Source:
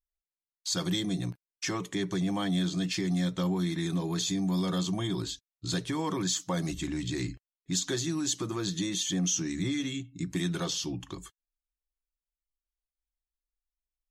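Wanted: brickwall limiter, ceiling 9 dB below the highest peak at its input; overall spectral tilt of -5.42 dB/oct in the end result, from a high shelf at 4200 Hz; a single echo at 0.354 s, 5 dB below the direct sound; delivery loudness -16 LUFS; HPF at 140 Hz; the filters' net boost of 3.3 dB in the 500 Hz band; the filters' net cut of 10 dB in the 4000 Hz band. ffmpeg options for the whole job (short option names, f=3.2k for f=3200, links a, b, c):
-af "highpass=140,equalizer=f=500:t=o:g=5,equalizer=f=4k:t=o:g=-7.5,highshelf=f=4.2k:g=-9,alimiter=level_in=2.5dB:limit=-24dB:level=0:latency=1,volume=-2.5dB,aecho=1:1:354:0.562,volume=18.5dB"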